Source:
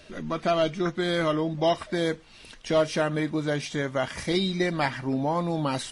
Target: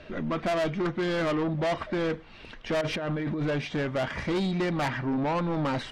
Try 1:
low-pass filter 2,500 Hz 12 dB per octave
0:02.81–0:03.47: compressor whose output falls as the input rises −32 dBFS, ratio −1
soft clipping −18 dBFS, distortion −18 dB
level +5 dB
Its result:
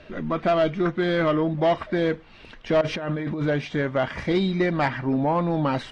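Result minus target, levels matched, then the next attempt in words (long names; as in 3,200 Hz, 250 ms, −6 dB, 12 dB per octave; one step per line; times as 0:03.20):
soft clipping: distortion −11 dB
low-pass filter 2,500 Hz 12 dB per octave
0:02.81–0:03.47: compressor whose output falls as the input rises −32 dBFS, ratio −1
soft clipping −29 dBFS, distortion −7 dB
level +5 dB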